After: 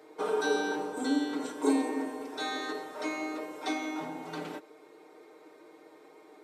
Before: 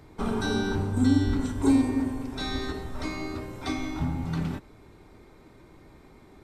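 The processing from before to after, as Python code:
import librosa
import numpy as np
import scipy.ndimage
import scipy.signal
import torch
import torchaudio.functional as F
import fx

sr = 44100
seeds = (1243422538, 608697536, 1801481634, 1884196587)

y = fx.ladder_highpass(x, sr, hz=350.0, resonance_pct=45)
y = y + 0.76 * np.pad(y, (int(6.5 * sr / 1000.0), 0))[:len(y)]
y = F.gain(torch.from_numpy(y), 5.5).numpy()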